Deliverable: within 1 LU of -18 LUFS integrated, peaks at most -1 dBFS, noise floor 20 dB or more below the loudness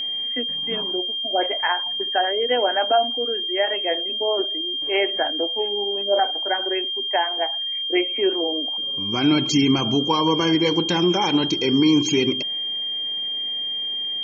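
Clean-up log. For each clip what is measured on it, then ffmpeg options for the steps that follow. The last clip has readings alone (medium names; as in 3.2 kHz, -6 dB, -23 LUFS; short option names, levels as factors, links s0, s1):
steady tone 3.2 kHz; tone level -24 dBFS; loudness -21.0 LUFS; peak level -7.0 dBFS; loudness target -18.0 LUFS
-> -af "bandreject=f=3200:w=30"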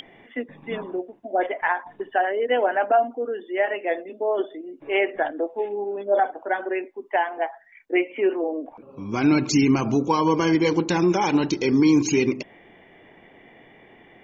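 steady tone not found; loudness -23.5 LUFS; peak level -8.0 dBFS; loudness target -18.0 LUFS
-> -af "volume=1.88"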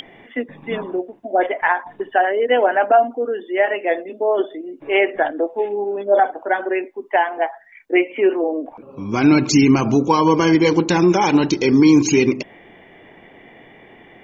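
loudness -18.0 LUFS; peak level -3.0 dBFS; noise floor -47 dBFS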